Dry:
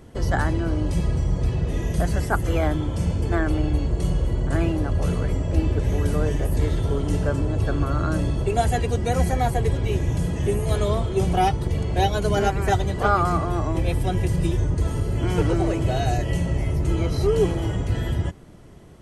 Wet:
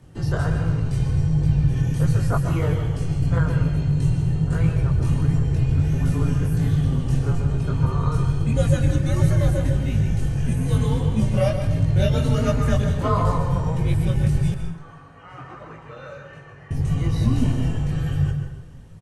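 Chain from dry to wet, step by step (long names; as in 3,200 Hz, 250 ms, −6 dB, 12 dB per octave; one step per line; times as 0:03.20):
sub-octave generator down 2 octaves, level +2 dB
repeating echo 144 ms, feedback 53%, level −14 dB
frequency shifter −170 Hz
multi-voice chorus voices 2, 1.4 Hz, delay 21 ms, depth 3 ms
0:14.54–0:16.71: resonant band-pass 1,200 Hz, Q 2
dense smooth reverb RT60 0.7 s, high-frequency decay 0.75×, pre-delay 115 ms, DRR 6.5 dB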